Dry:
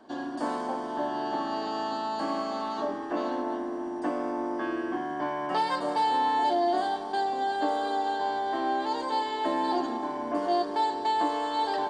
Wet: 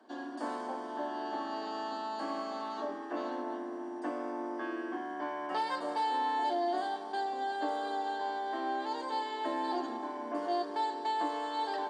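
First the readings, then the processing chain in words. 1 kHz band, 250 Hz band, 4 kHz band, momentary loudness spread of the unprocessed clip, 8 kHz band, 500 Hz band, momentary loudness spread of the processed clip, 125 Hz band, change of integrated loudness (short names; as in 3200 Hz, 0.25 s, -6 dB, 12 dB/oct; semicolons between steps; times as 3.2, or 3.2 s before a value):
-6.0 dB, -7.0 dB, -6.5 dB, 6 LU, n/a, -6.5 dB, 6 LU, under -10 dB, -6.5 dB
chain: HPF 220 Hz 24 dB/oct; bell 1700 Hz +2 dB; gain -6.5 dB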